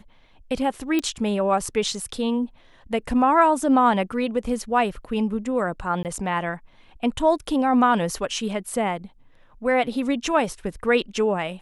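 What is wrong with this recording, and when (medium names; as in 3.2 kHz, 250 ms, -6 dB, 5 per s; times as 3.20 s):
0.99 s: pop -11 dBFS
6.03–6.05 s: dropout 18 ms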